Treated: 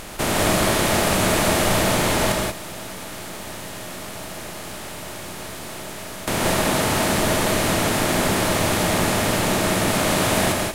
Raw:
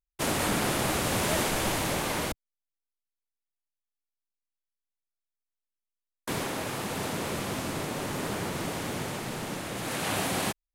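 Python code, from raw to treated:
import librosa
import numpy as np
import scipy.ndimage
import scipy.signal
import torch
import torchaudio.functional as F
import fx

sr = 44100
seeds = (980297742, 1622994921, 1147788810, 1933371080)

y = fx.bin_compress(x, sr, power=0.2)
y = fx.backlash(y, sr, play_db=-40.0, at=(1.82, 2.3))
y = fx.rev_gated(y, sr, seeds[0], gate_ms=210, shape='rising', drr_db=0.0)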